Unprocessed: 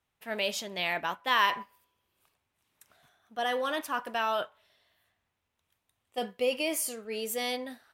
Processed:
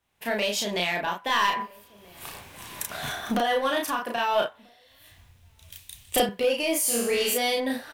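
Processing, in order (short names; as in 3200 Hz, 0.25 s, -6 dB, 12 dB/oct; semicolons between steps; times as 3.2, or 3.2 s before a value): recorder AGC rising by 36 dB/s; 6.81–7.34 flutter echo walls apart 4.4 m, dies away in 0.74 s; soft clip -21 dBFS, distortion -16 dB; notch 1300 Hz, Q 13; doubler 34 ms -2 dB; outdoor echo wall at 220 m, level -23 dB; 4.16–6.29 three-band expander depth 100%; gain +2.5 dB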